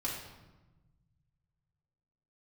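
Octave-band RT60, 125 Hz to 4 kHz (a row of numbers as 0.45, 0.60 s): 2.9, 1.9, 1.1, 1.1, 0.90, 0.80 s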